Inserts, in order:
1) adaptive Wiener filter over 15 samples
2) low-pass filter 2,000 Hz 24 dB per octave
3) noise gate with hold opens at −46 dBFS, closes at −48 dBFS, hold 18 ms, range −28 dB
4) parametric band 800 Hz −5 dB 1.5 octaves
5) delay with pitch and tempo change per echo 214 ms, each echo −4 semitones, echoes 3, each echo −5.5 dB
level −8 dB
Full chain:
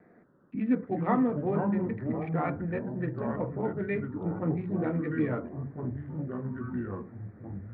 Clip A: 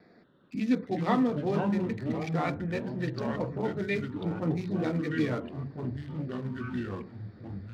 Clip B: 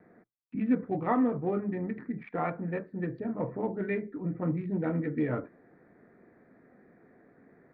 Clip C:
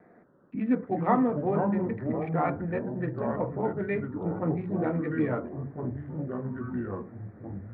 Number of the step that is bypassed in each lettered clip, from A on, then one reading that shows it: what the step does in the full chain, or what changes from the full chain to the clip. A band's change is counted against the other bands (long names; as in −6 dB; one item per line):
2, 2 kHz band +3.5 dB
5, change in momentary loudness spread −2 LU
4, 1 kHz band +3.0 dB